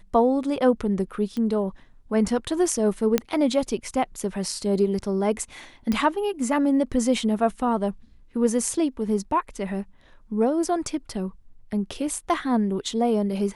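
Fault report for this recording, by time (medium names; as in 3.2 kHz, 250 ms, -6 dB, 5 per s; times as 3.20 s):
1.37 s: pop -19 dBFS
3.18 s: pop -6 dBFS
5.92 s: pop -13 dBFS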